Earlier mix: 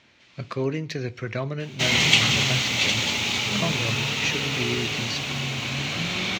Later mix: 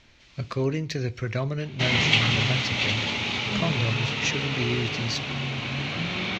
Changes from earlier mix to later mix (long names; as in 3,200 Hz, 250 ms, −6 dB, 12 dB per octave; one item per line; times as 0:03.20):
speech: remove band-pass filter 130–3,000 Hz
master: add high-frequency loss of the air 170 metres